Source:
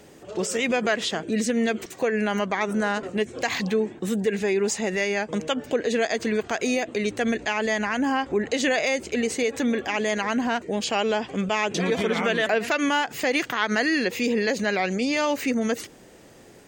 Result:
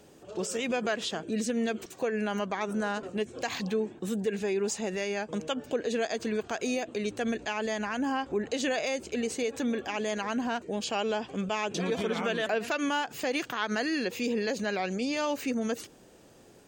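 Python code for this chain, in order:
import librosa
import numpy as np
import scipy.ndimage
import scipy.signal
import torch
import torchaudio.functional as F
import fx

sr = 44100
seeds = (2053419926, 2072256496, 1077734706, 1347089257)

y = fx.peak_eq(x, sr, hz=2000.0, db=-7.5, octaves=0.29)
y = y * librosa.db_to_amplitude(-6.0)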